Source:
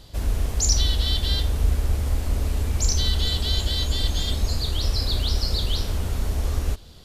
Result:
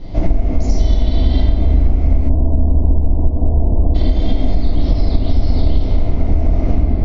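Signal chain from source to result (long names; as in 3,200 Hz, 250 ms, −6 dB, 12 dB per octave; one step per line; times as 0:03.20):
spectral tilt −2.5 dB per octave
convolution reverb RT60 2.2 s, pre-delay 6 ms, DRR −9 dB
downward compressor 6 to 1, threshold −8 dBFS, peak gain reduction 17.5 dB
Butterworth low-pass 6,700 Hz 72 dB per octave, from 0:02.28 1,100 Hz, from 0:03.94 6,400 Hz
hum removal 78.72 Hz, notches 23
hollow resonant body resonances 270/660/2,100 Hz, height 15 dB, ringing for 20 ms
level −1.5 dB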